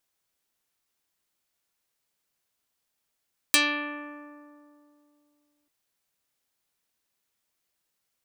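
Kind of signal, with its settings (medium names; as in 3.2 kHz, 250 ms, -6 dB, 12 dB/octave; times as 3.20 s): plucked string D4, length 2.14 s, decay 2.73 s, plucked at 0.41, dark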